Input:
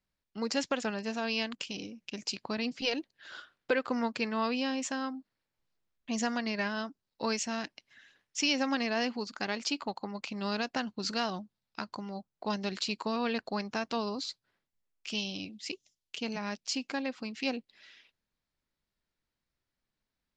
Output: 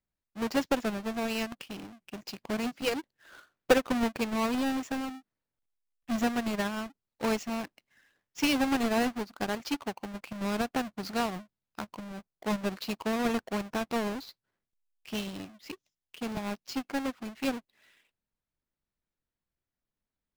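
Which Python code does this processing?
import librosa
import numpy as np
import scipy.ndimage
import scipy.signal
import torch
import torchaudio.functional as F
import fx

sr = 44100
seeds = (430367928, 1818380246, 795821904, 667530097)

y = fx.halfwave_hold(x, sr)
y = fx.high_shelf(y, sr, hz=4200.0, db=-8.0)
y = fx.upward_expand(y, sr, threshold_db=-41.0, expansion=1.5)
y = y * 10.0 ** (2.5 / 20.0)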